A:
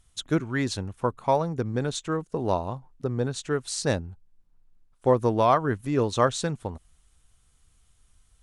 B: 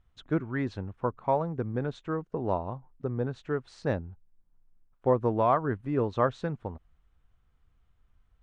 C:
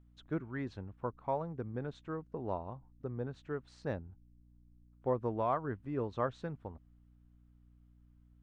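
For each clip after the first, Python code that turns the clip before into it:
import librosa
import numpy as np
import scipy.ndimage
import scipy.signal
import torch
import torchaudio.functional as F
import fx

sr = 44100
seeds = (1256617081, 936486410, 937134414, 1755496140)

y1 = scipy.signal.sosfilt(scipy.signal.butter(2, 1900.0, 'lowpass', fs=sr, output='sos'), x)
y1 = y1 * 10.0 ** (-3.5 / 20.0)
y2 = fx.add_hum(y1, sr, base_hz=60, snr_db=23)
y2 = y2 * 10.0 ** (-8.5 / 20.0)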